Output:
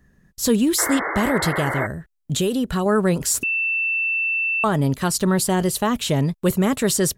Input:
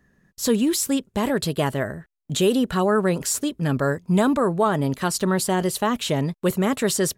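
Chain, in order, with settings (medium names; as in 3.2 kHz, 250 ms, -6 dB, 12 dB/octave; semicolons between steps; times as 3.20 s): 1.48–2.86 s: compression 2:1, threshold -23 dBFS, peak gain reduction 5 dB; bass shelf 130 Hz +10.5 dB; 0.78–1.87 s: painted sound noise 290–2200 Hz -26 dBFS; treble shelf 5.2 kHz +4.5 dB; 3.43–4.64 s: bleep 2.67 kHz -19 dBFS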